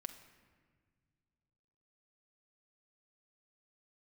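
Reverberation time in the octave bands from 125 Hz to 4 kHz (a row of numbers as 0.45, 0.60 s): 3.0, 2.5, 1.9, 1.5, 1.5, 1.0 s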